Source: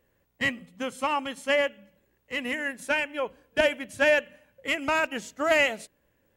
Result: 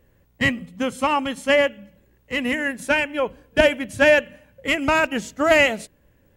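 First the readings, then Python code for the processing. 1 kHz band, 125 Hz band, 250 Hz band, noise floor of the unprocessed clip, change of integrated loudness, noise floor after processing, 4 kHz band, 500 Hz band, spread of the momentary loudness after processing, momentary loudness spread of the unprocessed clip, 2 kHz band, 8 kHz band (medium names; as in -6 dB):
+6.0 dB, +13.5 dB, +9.5 dB, -71 dBFS, +6.5 dB, -60 dBFS, +5.5 dB, +7.0 dB, 10 LU, 11 LU, +5.5 dB, +5.5 dB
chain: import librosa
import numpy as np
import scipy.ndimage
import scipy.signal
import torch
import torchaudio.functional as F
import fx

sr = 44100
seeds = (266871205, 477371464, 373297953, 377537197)

y = fx.low_shelf(x, sr, hz=220.0, db=10.5)
y = y * 10.0 ** (5.5 / 20.0)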